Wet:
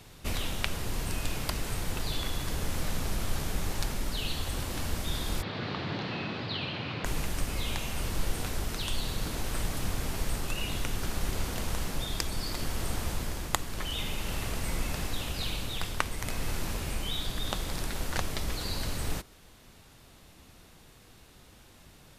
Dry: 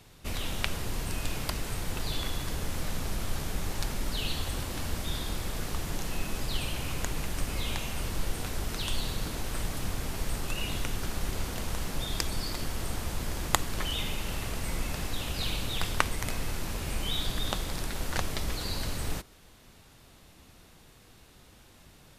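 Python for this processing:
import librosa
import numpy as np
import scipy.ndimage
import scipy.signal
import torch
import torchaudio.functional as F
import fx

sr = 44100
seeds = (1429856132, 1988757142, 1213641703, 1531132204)

y = fx.cheby1_bandpass(x, sr, low_hz=100.0, high_hz=4300.0, order=4, at=(5.41, 7.04), fade=0.02)
y = fx.rider(y, sr, range_db=10, speed_s=0.5)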